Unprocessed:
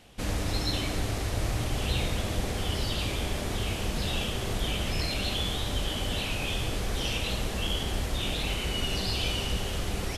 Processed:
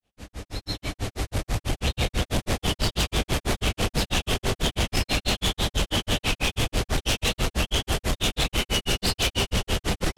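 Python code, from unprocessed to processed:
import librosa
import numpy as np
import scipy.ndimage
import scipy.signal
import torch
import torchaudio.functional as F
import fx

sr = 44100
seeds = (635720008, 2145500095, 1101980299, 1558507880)

y = fx.fade_in_head(x, sr, length_s=2.92)
y = fx.granulator(y, sr, seeds[0], grain_ms=125.0, per_s=6.1, spray_ms=21.0, spread_st=0)
y = fx.fold_sine(y, sr, drive_db=12, ceiling_db=-17.0)
y = y * 10.0 ** (-1.5 / 20.0)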